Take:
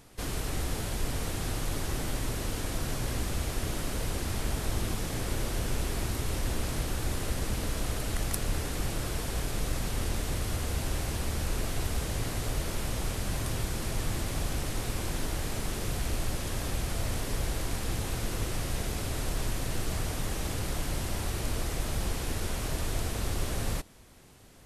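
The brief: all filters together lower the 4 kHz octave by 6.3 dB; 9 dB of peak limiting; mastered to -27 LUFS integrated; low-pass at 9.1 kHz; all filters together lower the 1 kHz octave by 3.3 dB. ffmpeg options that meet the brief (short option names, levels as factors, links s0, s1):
-af "lowpass=9100,equalizer=f=1000:t=o:g=-4,equalizer=f=4000:t=o:g=-8,volume=2.82,alimiter=limit=0.188:level=0:latency=1"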